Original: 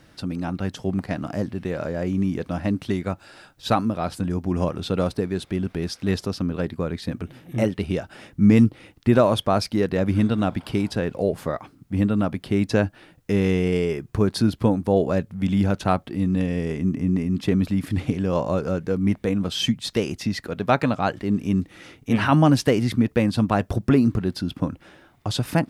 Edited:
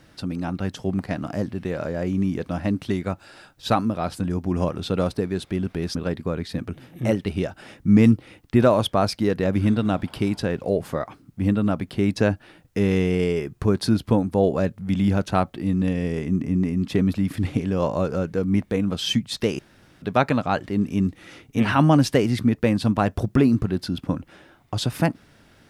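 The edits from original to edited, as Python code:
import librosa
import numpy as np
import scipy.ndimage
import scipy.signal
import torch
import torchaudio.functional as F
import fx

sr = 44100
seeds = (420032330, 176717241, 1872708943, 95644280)

y = fx.edit(x, sr, fx.cut(start_s=5.95, length_s=0.53),
    fx.room_tone_fill(start_s=20.12, length_s=0.43), tone=tone)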